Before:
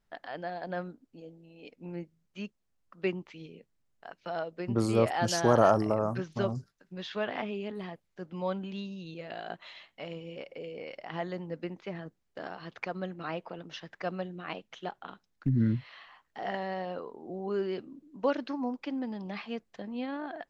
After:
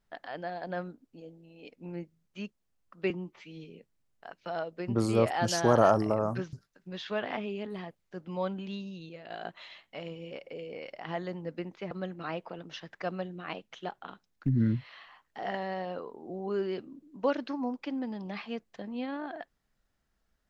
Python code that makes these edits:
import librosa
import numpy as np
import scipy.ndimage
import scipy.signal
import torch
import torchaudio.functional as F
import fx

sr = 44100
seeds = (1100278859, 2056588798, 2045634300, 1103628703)

y = fx.edit(x, sr, fx.stretch_span(start_s=3.1, length_s=0.4, factor=1.5),
    fx.cut(start_s=6.33, length_s=0.25),
    fx.fade_out_to(start_s=8.95, length_s=0.4, floor_db=-7.5),
    fx.cut(start_s=11.96, length_s=0.95), tone=tone)